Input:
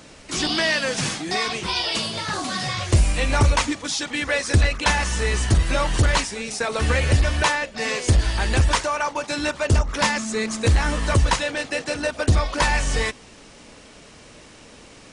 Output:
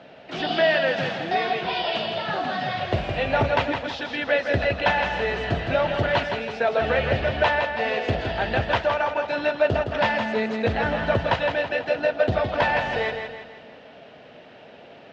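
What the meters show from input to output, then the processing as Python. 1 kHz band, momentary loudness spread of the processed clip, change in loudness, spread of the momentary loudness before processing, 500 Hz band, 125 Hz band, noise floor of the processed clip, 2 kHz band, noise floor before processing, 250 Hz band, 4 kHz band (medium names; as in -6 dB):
+1.0 dB, 5 LU, -2.0 dB, 6 LU, +4.5 dB, -8.5 dB, -46 dBFS, -0.5 dB, -46 dBFS, -2.5 dB, -5.0 dB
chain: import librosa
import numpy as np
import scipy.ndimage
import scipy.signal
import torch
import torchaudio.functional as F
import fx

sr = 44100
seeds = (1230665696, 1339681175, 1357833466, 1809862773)

y = fx.cabinet(x, sr, low_hz=170.0, low_slope=12, high_hz=3100.0, hz=(210.0, 310.0, 680.0, 1100.0, 2200.0), db=(-3, -7, 9, -9, -6))
y = fx.echo_feedback(y, sr, ms=164, feedback_pct=46, wet_db=-6.5)
y = y * librosa.db_to_amplitude(1.0)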